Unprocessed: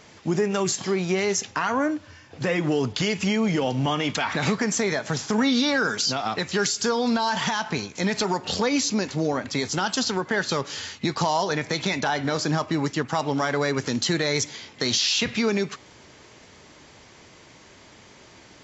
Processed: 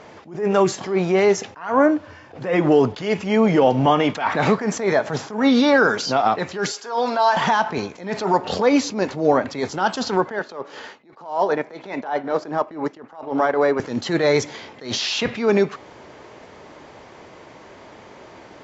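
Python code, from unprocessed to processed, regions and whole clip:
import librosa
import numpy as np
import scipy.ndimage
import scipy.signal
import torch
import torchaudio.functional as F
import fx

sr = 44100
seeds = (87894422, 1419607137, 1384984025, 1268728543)

y = fx.chain(x, sr, fx.highpass(hz=490.0, slope=12),
    fx.comb(ms=7.4, depth=0.43), at=(6.72, 7.37))
y = fx.chain(y, sr, fx.highpass(hz=240.0, slope=12),
    fx.high_shelf(hz=2500.0, db=-9.0),
    fx.transient(attack_db=-11, sustain_db=-7), at=(10.39, 13.8))
y = fx.lowpass(y, sr, hz=3300.0, slope=6)
y = fx.peak_eq(y, sr, hz=650.0, db=10.5, octaves=2.7)
y = fx.attack_slew(y, sr, db_per_s=130.0)
y = F.gain(torch.from_numpy(y), 1.0).numpy()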